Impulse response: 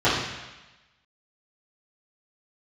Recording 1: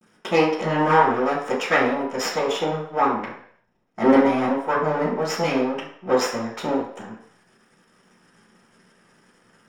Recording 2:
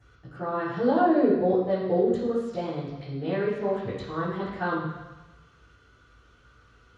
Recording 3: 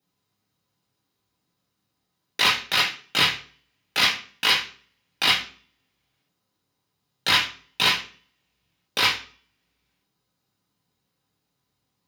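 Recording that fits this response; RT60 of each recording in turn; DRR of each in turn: 2; 0.60, 1.1, 0.45 seconds; −15.0, −11.5, −3.0 decibels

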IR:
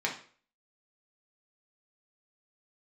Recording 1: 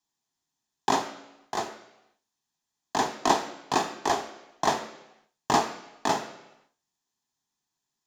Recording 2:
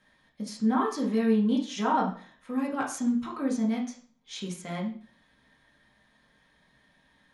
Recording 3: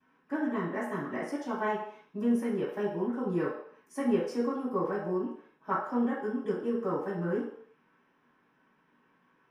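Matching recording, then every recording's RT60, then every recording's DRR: 2; 0.90 s, 0.45 s, non-exponential decay; 8.0, −2.5, −17.5 decibels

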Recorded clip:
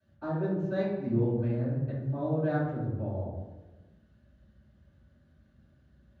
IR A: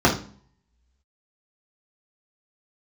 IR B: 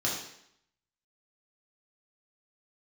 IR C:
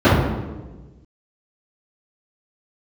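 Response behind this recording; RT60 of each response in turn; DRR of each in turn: C; 0.45, 0.70, 1.2 seconds; −5.5, −4.5, −16.0 decibels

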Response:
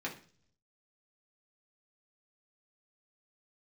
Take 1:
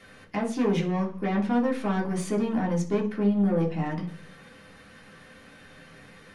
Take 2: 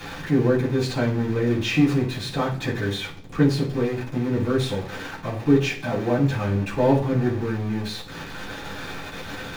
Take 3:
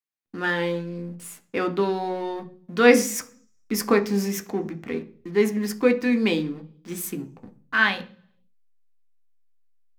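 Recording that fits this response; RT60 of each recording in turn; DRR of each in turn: 1; 0.45, 0.45, 0.45 seconds; −3.5, −12.0, 6.0 decibels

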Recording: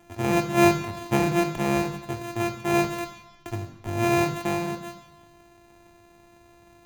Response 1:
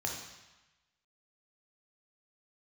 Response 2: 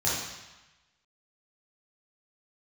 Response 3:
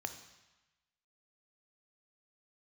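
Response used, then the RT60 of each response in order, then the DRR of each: 3; 1.1, 1.0, 1.1 seconds; 0.0, −7.5, 8.0 decibels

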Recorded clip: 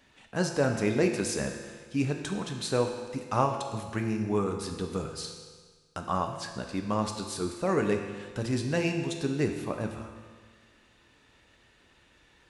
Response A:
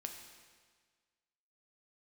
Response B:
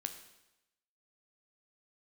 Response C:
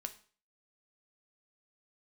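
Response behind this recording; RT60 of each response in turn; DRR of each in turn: A; 1.6, 0.95, 0.45 seconds; 3.5, 6.5, 7.0 decibels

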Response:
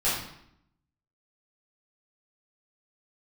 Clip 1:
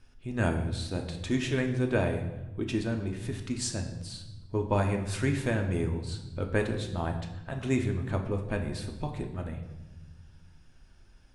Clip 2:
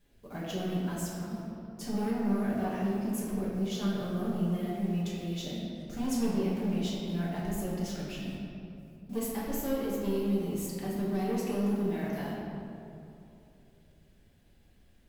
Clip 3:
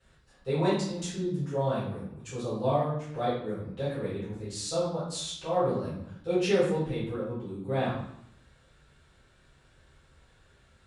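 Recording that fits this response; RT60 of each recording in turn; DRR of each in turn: 3; 1.1, 2.8, 0.70 seconds; 2.5, −7.5, −11.5 decibels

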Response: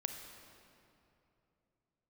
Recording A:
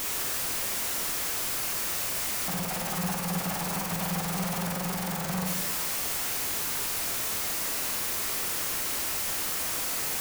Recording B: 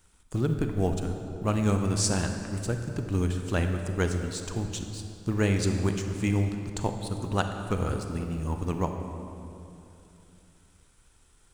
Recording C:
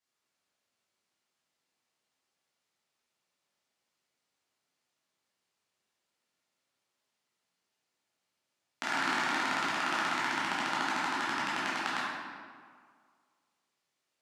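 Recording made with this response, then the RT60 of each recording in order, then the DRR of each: B; 1.1, 2.8, 1.9 seconds; 1.5, 5.0, −9.0 decibels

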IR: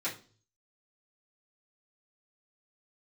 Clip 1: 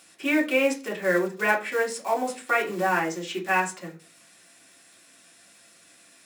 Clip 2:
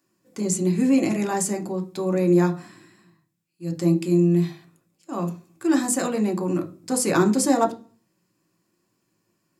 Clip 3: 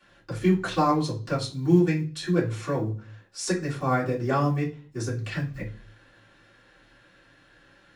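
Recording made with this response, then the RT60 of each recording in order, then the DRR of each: 3; 0.40, 0.40, 0.40 seconds; −1.5, 4.0, −10.0 decibels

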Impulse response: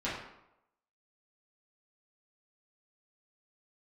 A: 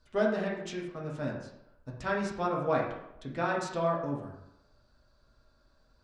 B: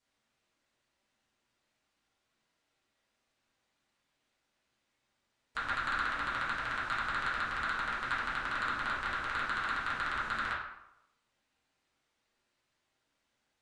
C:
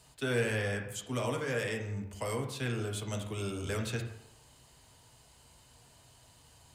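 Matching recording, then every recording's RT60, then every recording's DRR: B; 0.85, 0.85, 0.85 seconds; −3.0, −10.0, 2.5 decibels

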